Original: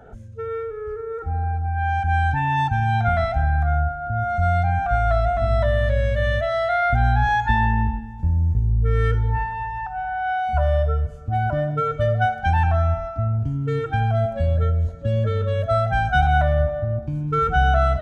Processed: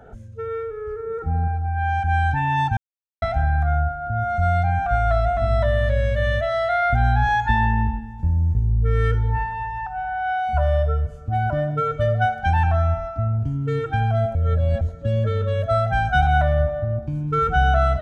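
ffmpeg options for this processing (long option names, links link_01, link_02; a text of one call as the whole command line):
ffmpeg -i in.wav -filter_complex "[0:a]asettb=1/sr,asplit=3[link_01][link_02][link_03];[link_01]atrim=end=1.054[link_04];[link_02]atrim=start=1.05:end=1.48,asetpts=PTS-STARTPTS,afade=type=in:duration=0.004:curve=qsin,afade=type=out:start_time=0.426:duration=0.004:curve=qsin,equalizer=frequency=180:width=1.3:gain=12[link_05];[link_03]atrim=start=1.476[link_06];[link_04][link_05]acrossfade=duration=0.004:curve1=hsin:curve2=qsin[link_07];[link_07][link_06]acrossfade=duration=0.004:curve1=qsin:curve2=hsin,asplit=5[link_08][link_09][link_10][link_11][link_12];[link_08]atrim=end=2.77,asetpts=PTS-STARTPTS,afade=type=out:start_time=2.766:duration=0.004:curve=hsin[link_13];[link_09]atrim=start=2.77:end=3.22,asetpts=PTS-STARTPTS,volume=0[link_14];[link_10]atrim=start=3.22:end=14.352,asetpts=PTS-STARTPTS,afade=type=in:duration=0.004:curve=hsin[link_15];[link_11]atrim=start=14.348:end=14.812,asetpts=PTS-STARTPTS,areverse[link_16];[link_12]atrim=start=14.808[link_17];[link_13][link_14][link_15]concat=n=3:v=0:a=1[link_18];[link_18][link_16]acrossfade=duration=0.004:curve1=hsin:curve2=hsin[link_19];[link_19][link_17]acrossfade=duration=0.004:curve1=hsin:curve2=hsin" out.wav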